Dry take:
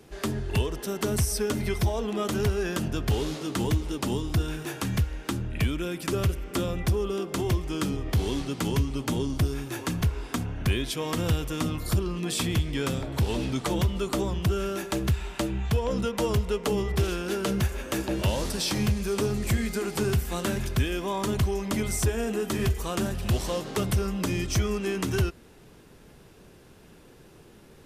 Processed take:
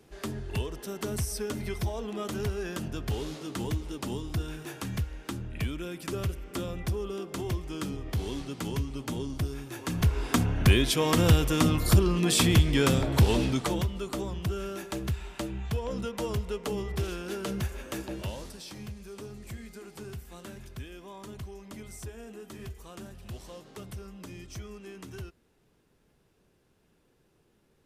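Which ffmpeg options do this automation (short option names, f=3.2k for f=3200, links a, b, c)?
-af "volume=5dB,afade=t=in:st=9.81:d=0.51:silence=0.281838,afade=t=out:st=13.18:d=0.71:silence=0.281838,afade=t=out:st=17.86:d=0.75:silence=0.316228"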